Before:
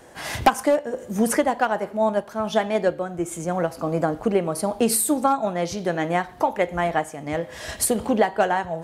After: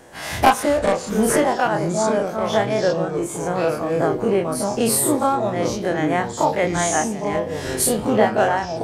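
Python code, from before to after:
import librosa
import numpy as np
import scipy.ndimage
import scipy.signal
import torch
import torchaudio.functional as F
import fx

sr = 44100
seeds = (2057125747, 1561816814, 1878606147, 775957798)

y = fx.spec_dilate(x, sr, span_ms=60)
y = fx.echo_pitch(y, sr, ms=256, semitones=-5, count=2, db_per_echo=-6.0)
y = F.gain(torch.from_numpy(y), -2.0).numpy()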